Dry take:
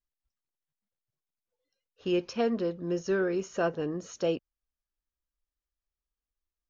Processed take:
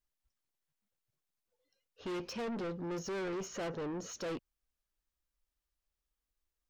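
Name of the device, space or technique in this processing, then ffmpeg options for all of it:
saturation between pre-emphasis and de-emphasis: -af "highshelf=frequency=5300:gain=7,asoftclip=type=tanh:threshold=-38.5dB,highshelf=frequency=5300:gain=-7,volume=2.5dB"

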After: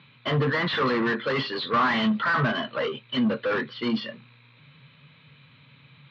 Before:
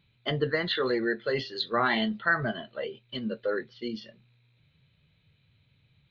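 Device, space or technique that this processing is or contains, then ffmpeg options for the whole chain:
overdrive pedal into a guitar cabinet: -filter_complex "[0:a]asplit=2[link_01][link_02];[link_02]highpass=frequency=720:poles=1,volume=31dB,asoftclip=type=tanh:threshold=-12dB[link_03];[link_01][link_03]amix=inputs=2:normalize=0,lowpass=frequency=2000:poles=1,volume=-6dB,highpass=100,equalizer=frequency=140:width_type=q:width=4:gain=10,equalizer=frequency=250:width_type=q:width=4:gain=7,equalizer=frequency=370:width_type=q:width=4:gain=-5,equalizer=frequency=700:width_type=q:width=4:gain=-6,equalizer=frequency=1100:width_type=q:width=4:gain=7,lowpass=frequency=4500:width=0.5412,lowpass=frequency=4500:width=1.3066,volume=-4.5dB"

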